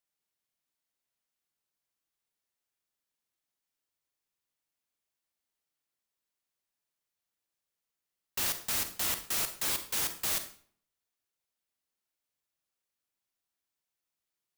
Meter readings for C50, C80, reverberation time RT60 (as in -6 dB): 10.5 dB, 14.5 dB, 0.50 s